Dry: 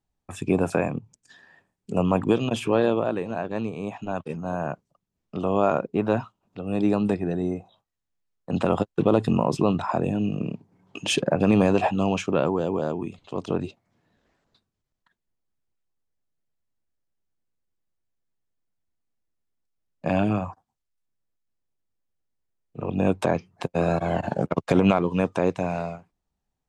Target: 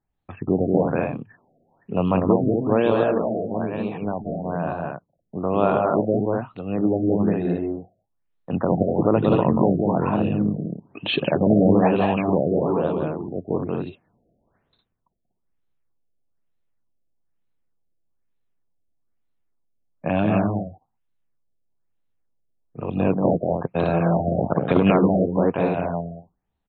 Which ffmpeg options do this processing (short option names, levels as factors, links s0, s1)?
-af "aecho=1:1:183.7|242:0.708|0.562,afftfilt=real='re*lt(b*sr/1024,720*pow(4400/720,0.5+0.5*sin(2*PI*1.1*pts/sr)))':imag='im*lt(b*sr/1024,720*pow(4400/720,0.5+0.5*sin(2*PI*1.1*pts/sr)))':win_size=1024:overlap=0.75,volume=1.12"